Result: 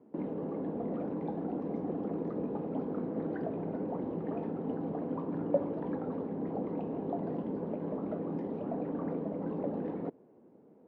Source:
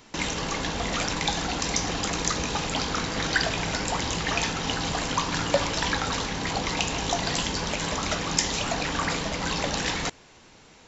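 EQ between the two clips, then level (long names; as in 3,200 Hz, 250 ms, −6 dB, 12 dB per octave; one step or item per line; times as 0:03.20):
flat-topped band-pass 320 Hz, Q 0.93
high-frequency loss of the air 180 metres
0.0 dB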